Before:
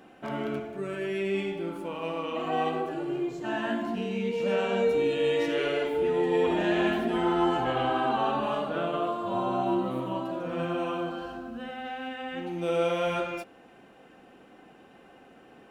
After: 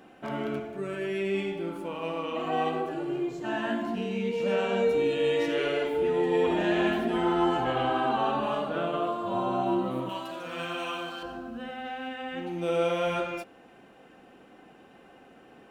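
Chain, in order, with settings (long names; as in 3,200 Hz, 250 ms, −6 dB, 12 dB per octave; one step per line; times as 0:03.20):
0:10.09–0:11.23: tilt shelving filter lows −9.5 dB, about 1,100 Hz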